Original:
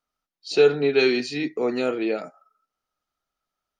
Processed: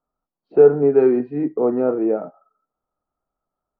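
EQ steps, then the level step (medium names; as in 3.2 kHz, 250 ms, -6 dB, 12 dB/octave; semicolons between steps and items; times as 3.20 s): low-pass 1.1 kHz 24 dB/octave; +5.5 dB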